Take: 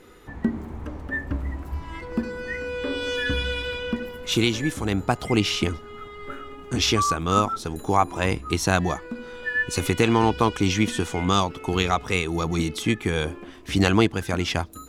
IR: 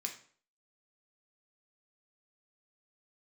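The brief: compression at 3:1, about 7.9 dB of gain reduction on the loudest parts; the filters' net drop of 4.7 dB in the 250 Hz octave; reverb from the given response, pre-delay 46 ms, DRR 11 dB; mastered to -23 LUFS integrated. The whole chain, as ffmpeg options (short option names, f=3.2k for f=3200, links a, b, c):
-filter_complex "[0:a]equalizer=f=250:t=o:g=-6.5,acompressor=threshold=-26dB:ratio=3,asplit=2[a][b];[1:a]atrim=start_sample=2205,adelay=46[c];[b][c]afir=irnorm=-1:irlink=0,volume=-10.5dB[d];[a][d]amix=inputs=2:normalize=0,volume=7.5dB"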